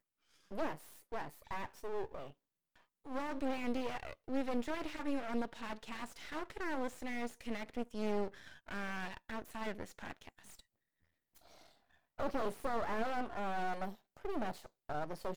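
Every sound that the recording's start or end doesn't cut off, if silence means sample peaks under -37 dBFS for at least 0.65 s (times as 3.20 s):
3.10–10.29 s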